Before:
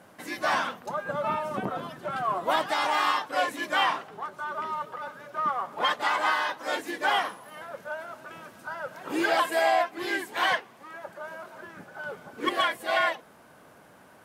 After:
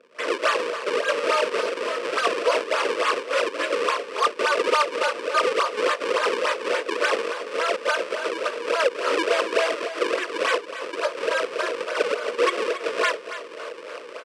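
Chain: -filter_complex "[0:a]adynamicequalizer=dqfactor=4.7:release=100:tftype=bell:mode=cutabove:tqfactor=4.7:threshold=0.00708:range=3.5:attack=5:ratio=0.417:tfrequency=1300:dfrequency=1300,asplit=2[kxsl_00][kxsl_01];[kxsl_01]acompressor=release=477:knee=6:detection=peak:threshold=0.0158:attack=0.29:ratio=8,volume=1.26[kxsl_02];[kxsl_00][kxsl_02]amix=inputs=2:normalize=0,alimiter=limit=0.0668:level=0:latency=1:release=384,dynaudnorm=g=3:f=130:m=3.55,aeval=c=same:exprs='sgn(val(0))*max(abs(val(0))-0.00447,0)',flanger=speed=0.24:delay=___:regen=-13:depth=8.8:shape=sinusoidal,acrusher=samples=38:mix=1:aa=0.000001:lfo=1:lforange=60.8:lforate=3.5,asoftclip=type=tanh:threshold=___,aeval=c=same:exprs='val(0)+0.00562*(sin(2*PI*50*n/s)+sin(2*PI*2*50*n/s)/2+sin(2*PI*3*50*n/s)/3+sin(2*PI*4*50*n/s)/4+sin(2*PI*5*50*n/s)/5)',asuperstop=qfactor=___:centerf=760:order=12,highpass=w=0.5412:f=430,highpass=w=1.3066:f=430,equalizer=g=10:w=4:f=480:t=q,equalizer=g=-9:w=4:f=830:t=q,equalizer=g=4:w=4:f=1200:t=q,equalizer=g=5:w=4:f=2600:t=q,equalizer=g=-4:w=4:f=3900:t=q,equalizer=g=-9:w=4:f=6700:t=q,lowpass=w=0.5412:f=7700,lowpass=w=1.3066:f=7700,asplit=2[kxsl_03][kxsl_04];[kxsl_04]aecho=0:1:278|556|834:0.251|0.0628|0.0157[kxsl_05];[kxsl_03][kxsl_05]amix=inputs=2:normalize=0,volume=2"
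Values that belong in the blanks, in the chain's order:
8.2, 0.106, 7.6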